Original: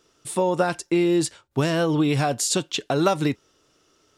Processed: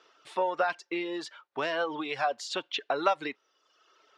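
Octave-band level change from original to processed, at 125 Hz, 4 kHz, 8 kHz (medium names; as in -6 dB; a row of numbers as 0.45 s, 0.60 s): -28.5 dB, -6.5 dB, -20.0 dB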